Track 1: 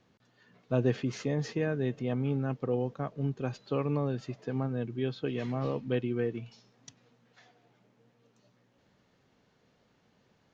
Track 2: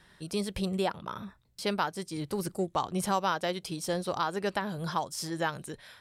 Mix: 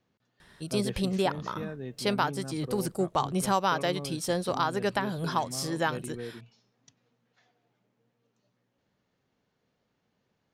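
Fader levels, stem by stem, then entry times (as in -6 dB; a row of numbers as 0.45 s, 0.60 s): -8.0 dB, +2.5 dB; 0.00 s, 0.40 s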